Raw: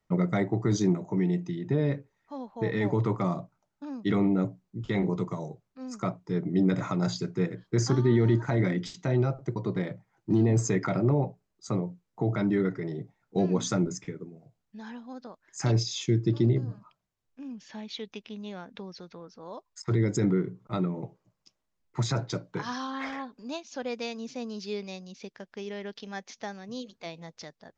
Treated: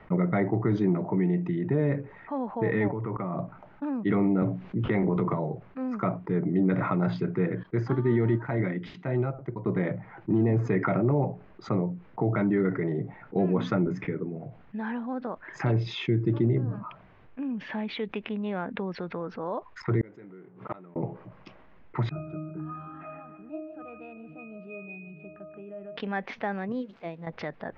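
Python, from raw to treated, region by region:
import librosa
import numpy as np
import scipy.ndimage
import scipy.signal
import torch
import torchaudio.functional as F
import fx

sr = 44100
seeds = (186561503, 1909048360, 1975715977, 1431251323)

y = fx.chain(x, sr, fx.savgol(points=25),
    fx.level_steps(step_db=20), at=(2.88, 3.39))
y = fx.chain(y, sr, fx.transient(attack_db=-1, sustain_db=6),
    fx.band_squash(depth_pct=70), at=(4.42, 5.34))
y = fx.chain(y, sr, fx.high_shelf(hz=4400.0, db=7.0),
    fx.upward_expand(threshold_db=-31.0, expansion=2.5), at=(7.63, 9.66))
y = fx.chain(y, sr, fx.law_mismatch(coded='mu'),
    fx.highpass(hz=440.0, slope=6),
    fx.gate_flip(shuts_db=-30.0, range_db=-41), at=(20.01, 20.96))
y = fx.chain(y, sr, fx.octave_resonator(note='D#', decay_s=0.52),
    fx.echo_feedback(ms=153, feedback_pct=59, wet_db=-16), at=(22.09, 25.97))
y = fx.chain(y, sr, fx.crossing_spikes(level_db=-37.5),
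    fx.peak_eq(hz=1900.0, db=-8.0, octaves=2.9),
    fx.upward_expand(threshold_db=-51.0, expansion=2.5), at=(26.72, 27.27))
y = scipy.signal.sosfilt(scipy.signal.butter(4, 2400.0, 'lowpass', fs=sr, output='sos'), y)
y = fx.low_shelf(y, sr, hz=130.0, db=-4.0)
y = fx.env_flatten(y, sr, amount_pct=50)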